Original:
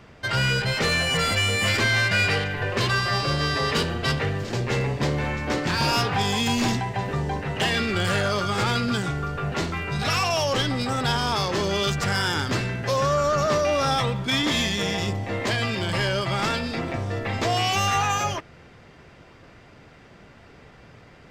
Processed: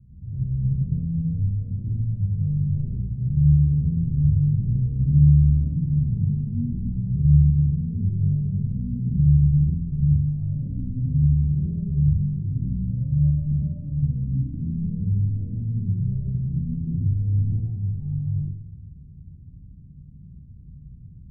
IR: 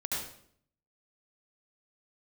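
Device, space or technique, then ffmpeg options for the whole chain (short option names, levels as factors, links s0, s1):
club heard from the street: -filter_complex "[0:a]alimiter=limit=0.133:level=0:latency=1,lowpass=f=160:w=0.5412,lowpass=f=160:w=1.3066[s0];[1:a]atrim=start_sample=2205[s1];[s0][s1]afir=irnorm=-1:irlink=0,volume=1.78"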